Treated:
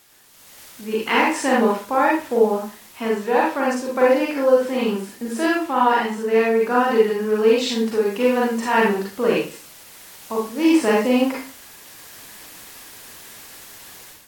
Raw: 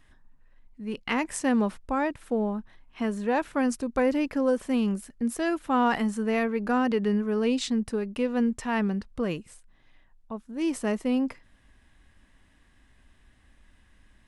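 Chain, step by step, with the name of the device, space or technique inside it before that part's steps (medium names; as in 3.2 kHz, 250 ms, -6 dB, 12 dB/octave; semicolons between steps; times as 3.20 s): filmed off a television (band-pass 290–6200 Hz; peaking EQ 960 Hz +4.5 dB 0.22 oct; reverberation RT60 0.35 s, pre-delay 36 ms, DRR -4.5 dB; white noise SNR 26 dB; level rider gain up to 13 dB; trim -3.5 dB; AAC 64 kbps 48 kHz)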